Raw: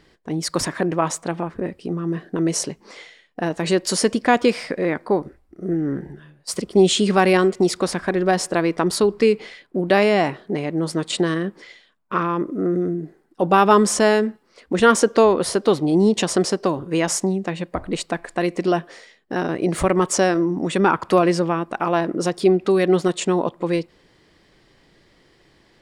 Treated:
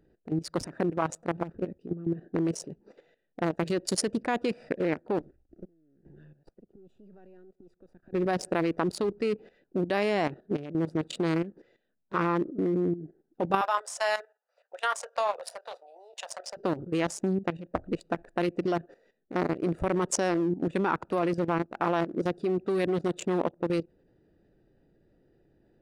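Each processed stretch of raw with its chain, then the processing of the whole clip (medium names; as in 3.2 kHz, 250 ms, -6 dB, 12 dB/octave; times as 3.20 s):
5.20–8.13 s: partial rectifier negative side -7 dB + inverted gate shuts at -20 dBFS, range -26 dB + three bands compressed up and down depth 70%
13.61–16.57 s: steep high-pass 590 Hz 48 dB/octave + doubling 24 ms -11 dB
whole clip: local Wiener filter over 41 samples; bass shelf 310 Hz -3 dB; level held to a coarse grid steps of 13 dB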